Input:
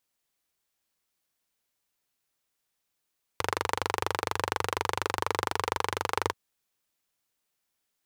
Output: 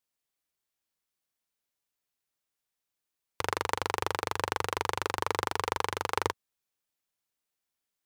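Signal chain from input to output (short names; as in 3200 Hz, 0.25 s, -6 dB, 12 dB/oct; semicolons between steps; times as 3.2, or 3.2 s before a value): upward expander 1.5:1, over -40 dBFS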